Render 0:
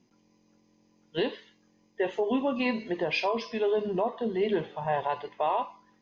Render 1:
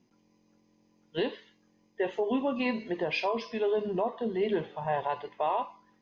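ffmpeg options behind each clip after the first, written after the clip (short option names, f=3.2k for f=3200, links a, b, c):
-af "highshelf=f=5.5k:g=-4.5,volume=-1.5dB"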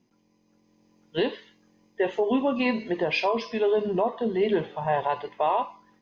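-af "dynaudnorm=f=460:g=3:m=5dB"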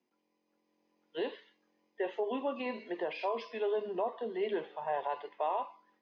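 -filter_complex "[0:a]acrossover=split=280 4900:gain=0.0631 1 0.141[a][b][c];[a][b][c]amix=inputs=3:normalize=0,acrossover=split=150|990[d][e][f];[f]alimiter=level_in=3.5dB:limit=-24dB:level=0:latency=1,volume=-3.5dB[g];[d][e][g]amix=inputs=3:normalize=0,volume=-8dB"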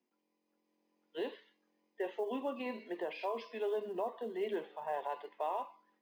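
-af "acrusher=bits=9:mode=log:mix=0:aa=0.000001,lowshelf=f=150:t=q:w=1.5:g=-8.5,volume=-4dB"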